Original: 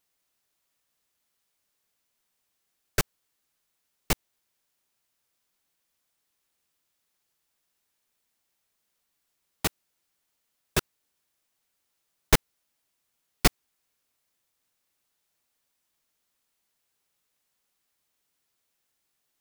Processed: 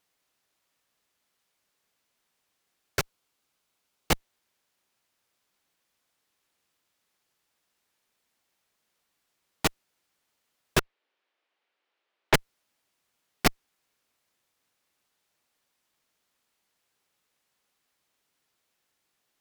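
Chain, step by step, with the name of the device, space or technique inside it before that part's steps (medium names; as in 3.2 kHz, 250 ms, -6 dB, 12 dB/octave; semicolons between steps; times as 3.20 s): 2.99–4.11 s: peaking EQ 1.8 kHz -6 dB 0.2 oct; 10.79–12.34 s: Chebyshev band-pass 390–3000 Hz, order 2; tube preamp driven hard (valve stage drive 20 dB, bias 0.7; bass shelf 97 Hz -6.5 dB; treble shelf 6.3 kHz -8 dB); trim +8.5 dB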